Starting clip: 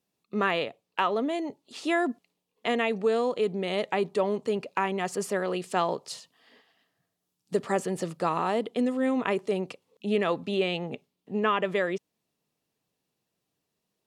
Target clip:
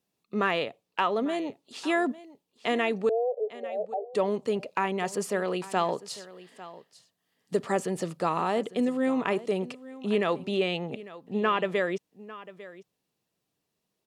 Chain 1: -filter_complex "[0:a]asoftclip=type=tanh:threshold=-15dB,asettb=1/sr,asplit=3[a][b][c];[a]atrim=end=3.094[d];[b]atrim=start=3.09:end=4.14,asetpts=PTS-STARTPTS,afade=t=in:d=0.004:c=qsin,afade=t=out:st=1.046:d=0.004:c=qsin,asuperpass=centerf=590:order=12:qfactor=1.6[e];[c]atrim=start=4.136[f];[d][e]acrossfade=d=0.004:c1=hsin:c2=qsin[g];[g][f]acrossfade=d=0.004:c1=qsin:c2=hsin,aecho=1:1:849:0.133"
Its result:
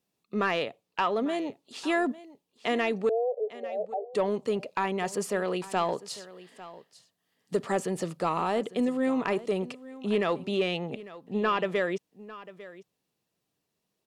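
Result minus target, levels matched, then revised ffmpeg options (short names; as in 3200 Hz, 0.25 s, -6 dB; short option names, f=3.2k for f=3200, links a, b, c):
soft clip: distortion +14 dB
-filter_complex "[0:a]asoftclip=type=tanh:threshold=-6.5dB,asettb=1/sr,asplit=3[a][b][c];[a]atrim=end=3.094[d];[b]atrim=start=3.09:end=4.14,asetpts=PTS-STARTPTS,afade=t=in:d=0.004:c=qsin,afade=t=out:st=1.046:d=0.004:c=qsin,asuperpass=centerf=590:order=12:qfactor=1.6[e];[c]atrim=start=4.136[f];[d][e]acrossfade=d=0.004:c1=hsin:c2=qsin[g];[g][f]acrossfade=d=0.004:c1=qsin:c2=hsin,aecho=1:1:849:0.133"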